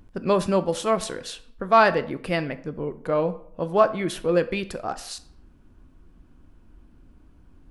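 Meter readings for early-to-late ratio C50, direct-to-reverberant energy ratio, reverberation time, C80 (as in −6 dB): 16.0 dB, 11.0 dB, 0.65 s, 19.0 dB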